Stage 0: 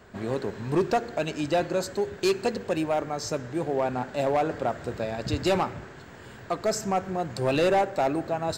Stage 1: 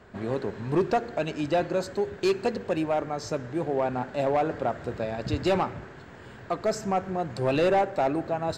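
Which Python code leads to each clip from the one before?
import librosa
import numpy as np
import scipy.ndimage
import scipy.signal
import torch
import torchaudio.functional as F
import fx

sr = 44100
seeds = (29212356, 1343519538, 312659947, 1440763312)

y = fx.lowpass(x, sr, hz=3500.0, slope=6)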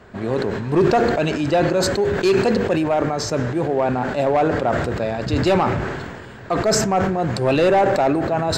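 y = fx.sustainer(x, sr, db_per_s=33.0)
y = y * 10.0 ** (6.5 / 20.0)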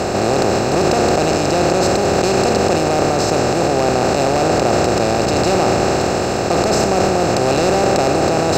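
y = fx.bin_compress(x, sr, power=0.2)
y = y * 10.0 ** (-6.5 / 20.0)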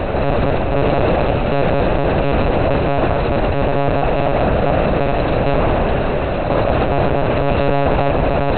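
y = fx.lpc_monotone(x, sr, seeds[0], pitch_hz=140.0, order=10)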